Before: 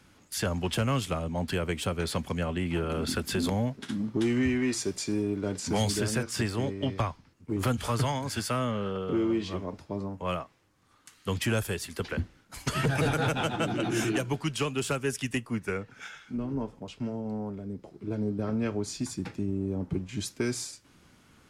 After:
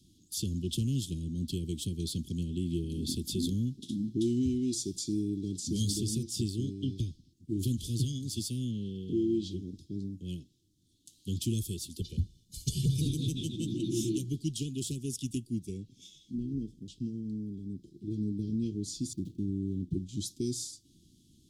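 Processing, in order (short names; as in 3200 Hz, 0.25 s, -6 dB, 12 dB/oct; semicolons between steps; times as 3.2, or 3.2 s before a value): 19.13–19.92 median filter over 25 samples; Chebyshev band-stop 350–3400 Hz, order 4; 12.01–13.02 comb 1.7 ms, depth 74%; gain -1.5 dB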